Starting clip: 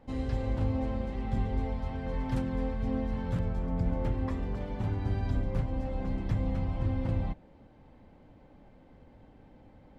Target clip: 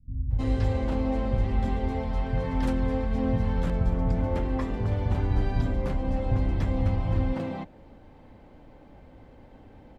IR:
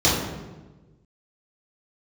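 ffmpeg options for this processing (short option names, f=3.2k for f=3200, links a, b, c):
-filter_complex "[0:a]acrossover=split=160[a][b];[b]adelay=310[c];[a][c]amix=inputs=2:normalize=0,volume=6dB"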